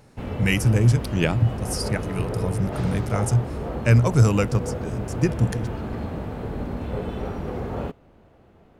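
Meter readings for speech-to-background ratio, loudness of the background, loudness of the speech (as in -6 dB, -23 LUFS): 8.5 dB, -31.0 LUFS, -22.5 LUFS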